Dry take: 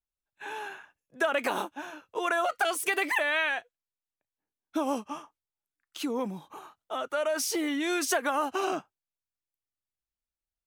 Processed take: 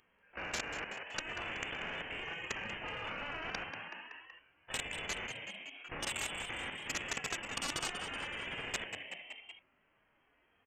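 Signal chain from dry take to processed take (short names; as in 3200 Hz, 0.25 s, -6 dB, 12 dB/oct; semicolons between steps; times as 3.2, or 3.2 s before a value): phase scrambler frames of 0.1 s; HPF 750 Hz 6 dB/oct; harmonic-percussive split percussive -15 dB; dynamic EQ 2100 Hz, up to -6 dB, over -44 dBFS, Q 0.87; negative-ratio compressor -39 dBFS, ratio -1; limiter -34.5 dBFS, peak gain reduction 9.5 dB; level quantiser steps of 14 dB; inverted band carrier 3200 Hz; soft clip -35.5 dBFS, distortion -22 dB; frequency-shifting echo 0.188 s, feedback 50%, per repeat +77 Hz, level -16 dB; spectral compressor 4:1; gain +15 dB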